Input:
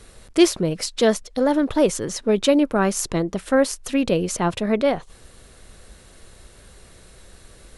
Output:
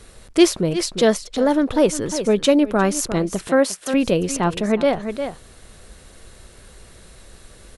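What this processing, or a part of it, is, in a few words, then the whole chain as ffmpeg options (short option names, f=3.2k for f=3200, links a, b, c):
ducked delay: -filter_complex "[0:a]asplit=3[a][b][c];[b]adelay=354,volume=-8dB[d];[c]apad=whole_len=358423[e];[d][e]sidechaincompress=threshold=-29dB:ratio=8:attack=25:release=125[f];[a][f]amix=inputs=2:normalize=0,asettb=1/sr,asplit=3[g][h][i];[g]atrim=end=3.484[j];[h]atrim=start=3.48:end=3.94,asetpts=PTS-STARTPTS,afade=t=in:d=0.004:c=qsin,afade=t=out:st=0.456:d=0.004:c=qsin,highpass=190[k];[i]atrim=start=3.936[l];[j][k]acrossfade=d=0.004:c1=hsin:c2=qsin[m];[m][l]acrossfade=d=0.004:c1=qsin:c2=hsin,volume=1.5dB"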